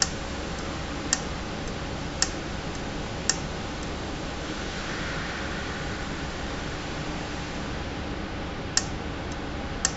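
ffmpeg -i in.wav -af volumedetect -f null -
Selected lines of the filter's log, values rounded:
mean_volume: -31.1 dB
max_volume: -3.2 dB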